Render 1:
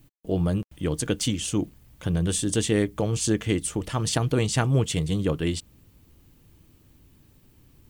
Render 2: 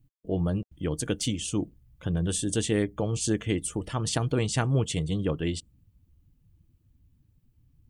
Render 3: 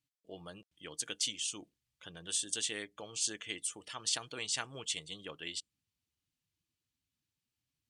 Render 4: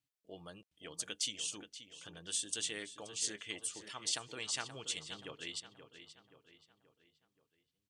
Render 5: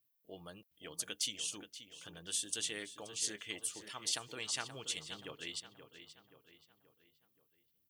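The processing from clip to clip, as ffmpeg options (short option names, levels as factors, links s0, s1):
-af "afftdn=nr=17:nf=-45,volume=0.708"
-af "bandpass=f=4600:t=q:w=0.74:csg=0"
-filter_complex "[0:a]asplit=2[s0][s1];[s1]adelay=528,lowpass=f=3400:p=1,volume=0.316,asplit=2[s2][s3];[s3]adelay=528,lowpass=f=3400:p=1,volume=0.48,asplit=2[s4][s5];[s5]adelay=528,lowpass=f=3400:p=1,volume=0.48,asplit=2[s6][s7];[s7]adelay=528,lowpass=f=3400:p=1,volume=0.48,asplit=2[s8][s9];[s9]adelay=528,lowpass=f=3400:p=1,volume=0.48[s10];[s0][s2][s4][s6][s8][s10]amix=inputs=6:normalize=0,volume=0.75"
-af "aexciter=amount=6.4:drive=4.7:freq=11000"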